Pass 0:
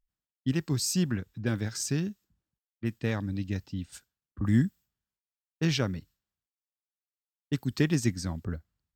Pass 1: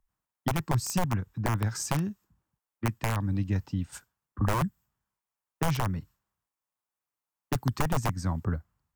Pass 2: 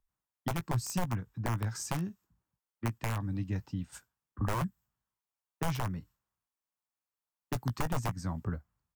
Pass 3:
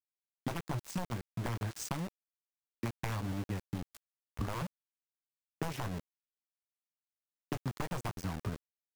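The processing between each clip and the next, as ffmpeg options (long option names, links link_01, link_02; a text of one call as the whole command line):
ffmpeg -i in.wav -filter_complex "[0:a]aeval=exprs='(mod(9.44*val(0)+1,2)-1)/9.44':channel_layout=same,equalizer=frequency=125:width_type=o:width=1:gain=3,equalizer=frequency=1000:width_type=o:width=1:gain=10,equalizer=frequency=4000:width_type=o:width=1:gain=-6,acrossover=split=150[link_01][link_02];[link_02]acompressor=threshold=-36dB:ratio=2.5[link_03];[link_01][link_03]amix=inputs=2:normalize=0,volume=4dB" out.wav
ffmpeg -i in.wav -filter_complex "[0:a]asplit=2[link_01][link_02];[link_02]adelay=17,volume=-12dB[link_03];[link_01][link_03]amix=inputs=2:normalize=0,volume=-5.5dB" out.wav
ffmpeg -i in.wav -af "highshelf=frequency=6700:gain=-6.5,acompressor=threshold=-38dB:ratio=8,aeval=exprs='val(0)*gte(abs(val(0)),0.0075)':channel_layout=same,volume=5dB" out.wav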